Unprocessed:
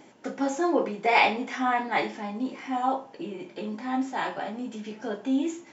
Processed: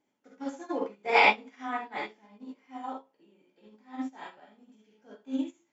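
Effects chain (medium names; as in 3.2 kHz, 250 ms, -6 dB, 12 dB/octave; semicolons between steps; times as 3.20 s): gated-style reverb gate 90 ms rising, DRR 0 dB; upward expansion 2.5:1, over -33 dBFS; trim -1.5 dB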